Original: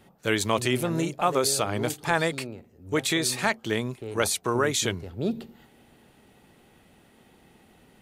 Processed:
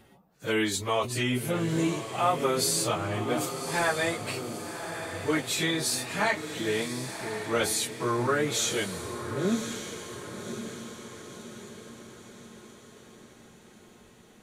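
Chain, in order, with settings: plain phase-vocoder stretch 1.8×; on a send: diffused feedback echo 1.105 s, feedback 51%, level -9 dB

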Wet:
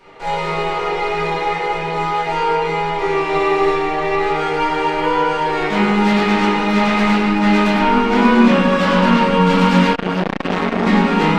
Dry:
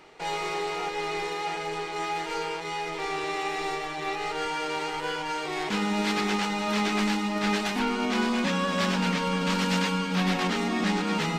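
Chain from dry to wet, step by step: reverb RT60 1.9 s, pre-delay 4 ms, DRR -12.5 dB; 9.93–10.87 core saturation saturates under 1100 Hz; gain -1.5 dB

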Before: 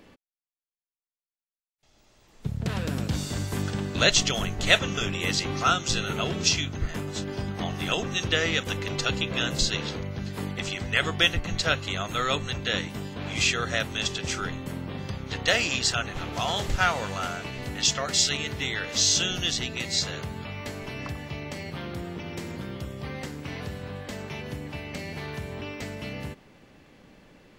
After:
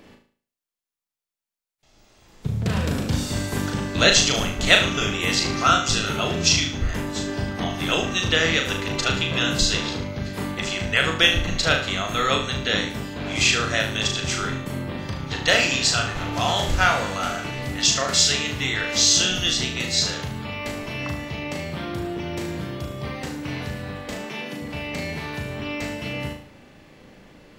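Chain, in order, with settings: 24.14–24.62 HPF 180 Hz 24 dB/oct; flutter echo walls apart 6.4 m, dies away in 0.47 s; gain +3.5 dB

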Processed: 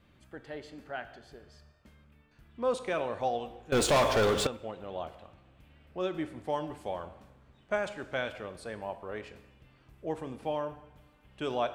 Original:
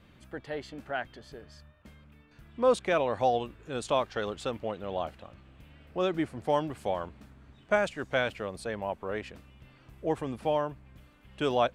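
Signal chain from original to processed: two-slope reverb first 0.91 s, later 2.4 s, DRR 9.5 dB; 3.72–4.47 sample leveller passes 5; gain -5.5 dB

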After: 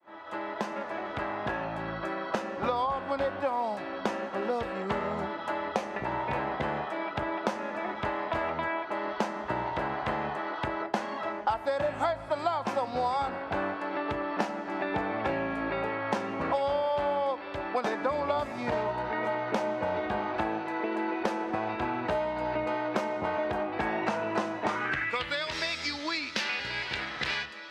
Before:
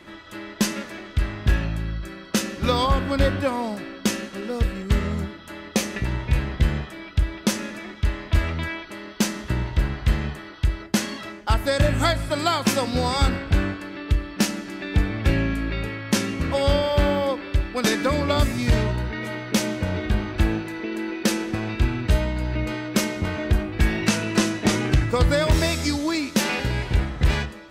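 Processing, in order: opening faded in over 4.19 s; band-pass sweep 810 Hz -> 4800 Hz, 24.59–25.47; three-band squash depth 100%; gain +4.5 dB

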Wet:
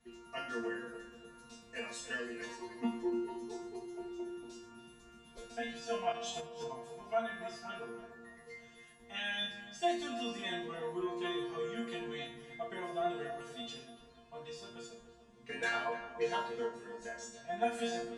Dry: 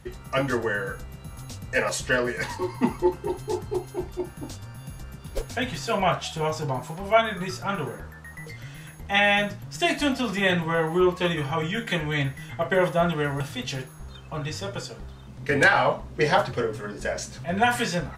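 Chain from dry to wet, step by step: LPF 9700 Hz 24 dB/oct; resonator bank A#3 fifth, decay 0.43 s; 6.12–6.71 negative-ratio compressor -49 dBFS, ratio -1; HPF 94 Hz 6 dB/oct; on a send: darkening echo 0.29 s, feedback 45%, low-pass 1600 Hz, level -10.5 dB; on the sum: shoebox room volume 2000 m³, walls furnished, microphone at 1.5 m; gain +2.5 dB

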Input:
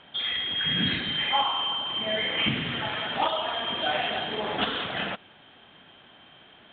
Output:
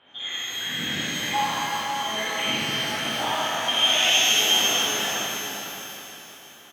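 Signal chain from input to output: 3.68–4.44 resonant high shelf 2000 Hz +12 dB, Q 1.5; on a send: feedback echo 0.325 s, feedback 58%, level -14 dB; on the sum: soft clip -8.5 dBFS, distortion -25 dB; HPF 140 Hz 6 dB/oct; outdoor echo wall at 89 m, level -9 dB; shimmer reverb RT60 2.5 s, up +12 st, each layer -8 dB, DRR -9 dB; gain -8.5 dB

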